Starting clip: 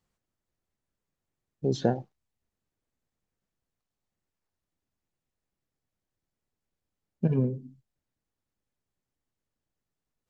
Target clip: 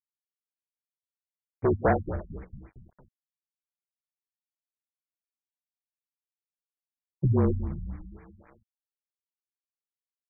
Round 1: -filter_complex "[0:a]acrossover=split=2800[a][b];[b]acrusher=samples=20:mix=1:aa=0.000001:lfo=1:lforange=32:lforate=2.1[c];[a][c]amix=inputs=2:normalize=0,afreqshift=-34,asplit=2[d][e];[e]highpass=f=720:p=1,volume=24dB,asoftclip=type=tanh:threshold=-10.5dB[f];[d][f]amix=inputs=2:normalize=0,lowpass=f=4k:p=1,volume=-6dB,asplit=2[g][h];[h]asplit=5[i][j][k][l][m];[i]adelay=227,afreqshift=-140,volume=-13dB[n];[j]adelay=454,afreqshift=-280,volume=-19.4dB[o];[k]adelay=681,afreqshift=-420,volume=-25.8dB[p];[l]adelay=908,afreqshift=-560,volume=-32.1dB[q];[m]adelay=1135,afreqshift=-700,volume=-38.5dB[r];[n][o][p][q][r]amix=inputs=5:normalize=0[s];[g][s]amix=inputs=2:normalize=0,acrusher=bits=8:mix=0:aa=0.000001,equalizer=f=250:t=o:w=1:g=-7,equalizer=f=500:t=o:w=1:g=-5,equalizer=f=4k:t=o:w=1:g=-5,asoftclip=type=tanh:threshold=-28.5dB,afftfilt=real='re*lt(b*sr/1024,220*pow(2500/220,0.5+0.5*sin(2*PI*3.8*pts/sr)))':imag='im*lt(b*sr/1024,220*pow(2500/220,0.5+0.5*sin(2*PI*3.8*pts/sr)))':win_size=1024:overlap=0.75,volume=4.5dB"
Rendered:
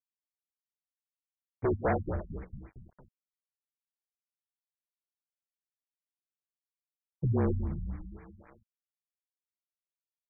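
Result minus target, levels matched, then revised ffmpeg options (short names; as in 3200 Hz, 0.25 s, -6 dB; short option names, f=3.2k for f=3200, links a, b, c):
soft clip: distortion +10 dB
-filter_complex "[0:a]acrossover=split=2800[a][b];[b]acrusher=samples=20:mix=1:aa=0.000001:lfo=1:lforange=32:lforate=2.1[c];[a][c]amix=inputs=2:normalize=0,afreqshift=-34,asplit=2[d][e];[e]highpass=f=720:p=1,volume=24dB,asoftclip=type=tanh:threshold=-10.5dB[f];[d][f]amix=inputs=2:normalize=0,lowpass=f=4k:p=1,volume=-6dB,asplit=2[g][h];[h]asplit=5[i][j][k][l][m];[i]adelay=227,afreqshift=-140,volume=-13dB[n];[j]adelay=454,afreqshift=-280,volume=-19.4dB[o];[k]adelay=681,afreqshift=-420,volume=-25.8dB[p];[l]adelay=908,afreqshift=-560,volume=-32.1dB[q];[m]adelay=1135,afreqshift=-700,volume=-38.5dB[r];[n][o][p][q][r]amix=inputs=5:normalize=0[s];[g][s]amix=inputs=2:normalize=0,acrusher=bits=8:mix=0:aa=0.000001,equalizer=f=250:t=o:w=1:g=-7,equalizer=f=500:t=o:w=1:g=-5,equalizer=f=4k:t=o:w=1:g=-5,asoftclip=type=tanh:threshold=-19dB,afftfilt=real='re*lt(b*sr/1024,220*pow(2500/220,0.5+0.5*sin(2*PI*3.8*pts/sr)))':imag='im*lt(b*sr/1024,220*pow(2500/220,0.5+0.5*sin(2*PI*3.8*pts/sr)))':win_size=1024:overlap=0.75,volume=4.5dB"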